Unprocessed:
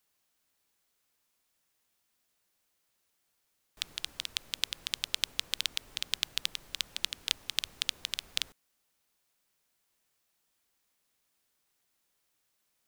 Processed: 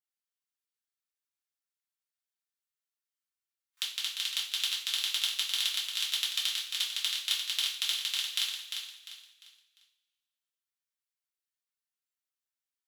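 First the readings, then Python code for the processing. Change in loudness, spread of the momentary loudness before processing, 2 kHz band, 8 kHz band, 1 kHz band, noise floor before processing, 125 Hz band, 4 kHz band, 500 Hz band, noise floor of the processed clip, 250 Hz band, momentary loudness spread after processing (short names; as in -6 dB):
+4.0 dB, 6 LU, +2.0 dB, +3.5 dB, +0.5 dB, -78 dBFS, under -15 dB, +4.5 dB, n/a, under -85 dBFS, under -10 dB, 9 LU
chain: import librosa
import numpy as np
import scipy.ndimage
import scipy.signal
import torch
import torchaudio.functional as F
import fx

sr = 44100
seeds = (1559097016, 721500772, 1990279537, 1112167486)

p1 = scipy.signal.sosfilt(scipy.signal.butter(4, 1200.0, 'highpass', fs=sr, output='sos'), x)
p2 = fx.leveller(p1, sr, passes=2)
p3 = fx.noise_reduce_blind(p2, sr, reduce_db=13)
p4 = p3 + fx.echo_feedback(p3, sr, ms=349, feedback_pct=34, wet_db=-6.5, dry=0)
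p5 = fx.rev_double_slope(p4, sr, seeds[0], early_s=0.4, late_s=1.7, knee_db=-19, drr_db=-4.5)
y = p5 * librosa.db_to_amplitude(-7.0)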